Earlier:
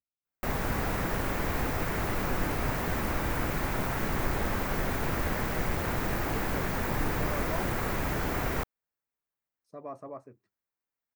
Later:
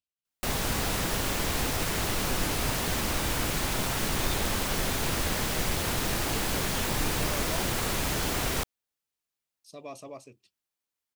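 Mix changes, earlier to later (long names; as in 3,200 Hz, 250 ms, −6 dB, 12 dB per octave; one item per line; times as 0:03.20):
speech: add high shelf with overshoot 2,100 Hz +9.5 dB, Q 3
master: add flat-topped bell 6,000 Hz +12 dB 2.5 octaves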